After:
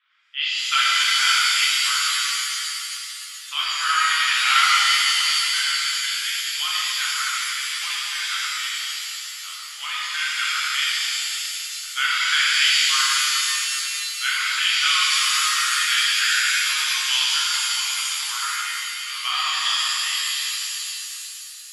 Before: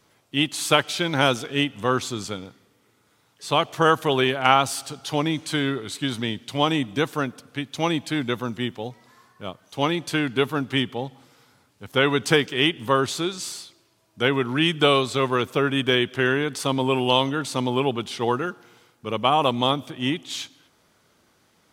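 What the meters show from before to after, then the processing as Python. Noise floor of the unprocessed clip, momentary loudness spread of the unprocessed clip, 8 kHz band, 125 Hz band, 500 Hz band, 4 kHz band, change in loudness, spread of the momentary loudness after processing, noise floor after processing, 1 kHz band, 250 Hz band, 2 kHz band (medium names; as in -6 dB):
-63 dBFS, 13 LU, +13.0 dB, under -40 dB, under -35 dB, +8.5 dB, +3.5 dB, 11 LU, -36 dBFS, -1.0 dB, under -40 dB, +6.5 dB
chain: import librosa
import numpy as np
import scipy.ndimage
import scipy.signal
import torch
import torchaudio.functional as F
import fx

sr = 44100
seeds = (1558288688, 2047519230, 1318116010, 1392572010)

y = scipy.signal.sosfilt(scipy.signal.ellip(3, 1.0, 80, [1300.0, 3400.0], 'bandpass', fs=sr, output='sos'), x)
y = fx.rev_shimmer(y, sr, seeds[0], rt60_s=3.0, semitones=7, shimmer_db=-2, drr_db=-7.5)
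y = F.gain(torch.from_numpy(y), -3.0).numpy()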